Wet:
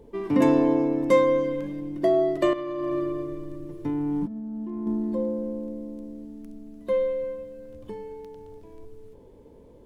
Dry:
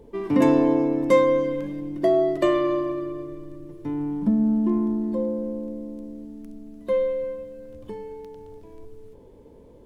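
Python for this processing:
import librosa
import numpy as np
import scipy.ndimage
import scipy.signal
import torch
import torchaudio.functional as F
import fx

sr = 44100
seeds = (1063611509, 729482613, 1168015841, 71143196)

y = fx.over_compress(x, sr, threshold_db=-28.0, ratio=-1.0, at=(2.53, 4.87))
y = F.gain(torch.from_numpy(y), -1.5).numpy()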